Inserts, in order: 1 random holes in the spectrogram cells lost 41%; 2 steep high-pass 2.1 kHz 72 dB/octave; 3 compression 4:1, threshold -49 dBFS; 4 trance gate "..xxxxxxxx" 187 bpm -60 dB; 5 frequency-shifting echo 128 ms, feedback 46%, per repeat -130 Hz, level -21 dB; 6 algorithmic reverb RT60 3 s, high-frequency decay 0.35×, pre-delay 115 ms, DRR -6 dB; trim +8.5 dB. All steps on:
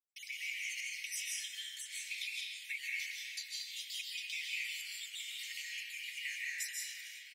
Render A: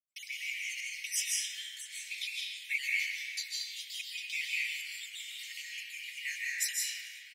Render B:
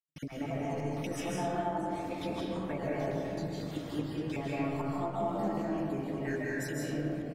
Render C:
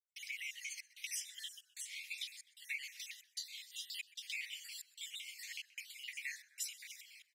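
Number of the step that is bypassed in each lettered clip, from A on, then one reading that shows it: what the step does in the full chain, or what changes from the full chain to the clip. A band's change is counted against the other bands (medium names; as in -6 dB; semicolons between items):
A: 3, mean gain reduction 2.0 dB; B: 2, crest factor change -3.0 dB; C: 6, momentary loudness spread change +2 LU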